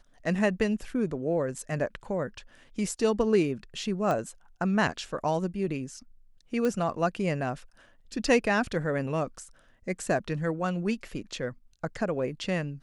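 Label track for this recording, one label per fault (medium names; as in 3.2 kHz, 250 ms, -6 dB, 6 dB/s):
4.110000	4.110000	pop -18 dBFS
6.650000	6.650000	pop -17 dBFS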